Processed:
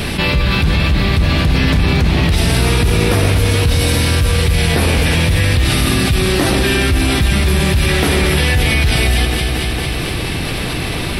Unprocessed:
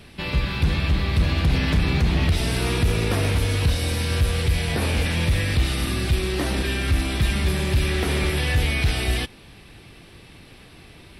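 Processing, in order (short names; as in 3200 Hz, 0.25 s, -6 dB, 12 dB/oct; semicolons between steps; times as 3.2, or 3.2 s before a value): high shelf 11000 Hz +4 dB; echo with dull and thin repeats by turns 0.114 s, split 1500 Hz, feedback 74%, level -8.5 dB; fast leveller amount 70%; gain +3 dB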